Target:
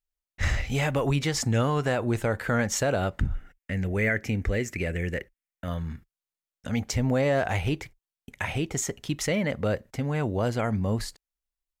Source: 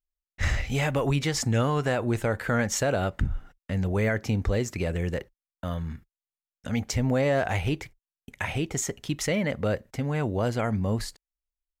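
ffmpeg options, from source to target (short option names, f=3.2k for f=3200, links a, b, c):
-filter_complex "[0:a]asettb=1/sr,asplit=3[a][b][c];[a]atrim=end=3.354[d];[b]atrim=start=3.35:end=5.68,asetpts=PTS-STARTPTS,afade=t=in:d=0.004:c=qsin,afade=t=out:st=2.326:d=0.004:c=qsin,equalizer=f=125:t=o:w=1:g=-3,equalizer=f=1k:t=o:w=1:g=-10,equalizer=f=2k:t=o:w=1:g=10,equalizer=f=4k:t=o:w=1:g=-7[e];[c]atrim=start=5.676[f];[d][e]acrossfade=d=0.004:c1=hsin:c2=qsin[g];[g][f]acrossfade=d=0.004:c1=qsin:c2=hsin"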